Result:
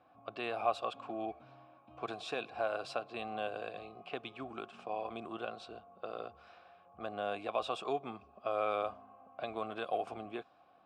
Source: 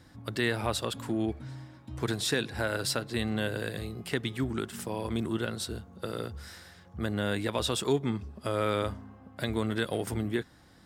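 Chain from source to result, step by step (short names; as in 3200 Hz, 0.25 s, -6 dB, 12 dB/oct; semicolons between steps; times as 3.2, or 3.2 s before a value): low-pass opened by the level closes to 2600 Hz, open at -24.5 dBFS; vowel filter a; gain +7.5 dB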